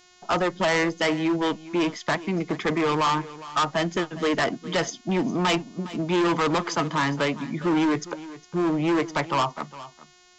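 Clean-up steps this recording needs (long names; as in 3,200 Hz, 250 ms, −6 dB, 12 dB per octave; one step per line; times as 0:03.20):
hum removal 360.7 Hz, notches 20
echo removal 409 ms −17 dB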